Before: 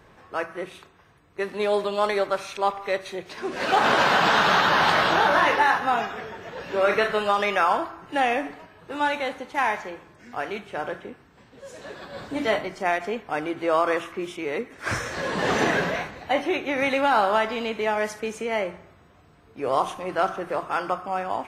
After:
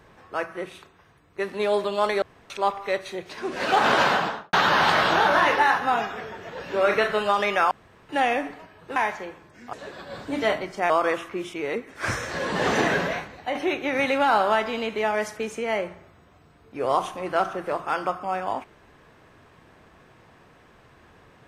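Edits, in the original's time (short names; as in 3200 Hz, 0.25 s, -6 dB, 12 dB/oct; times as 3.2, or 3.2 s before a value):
2.22–2.5 room tone
4.02–4.53 studio fade out
7.71–8.09 room tone
8.96–9.61 cut
10.38–11.76 cut
12.93–13.73 cut
15.89–16.38 fade out, to -6 dB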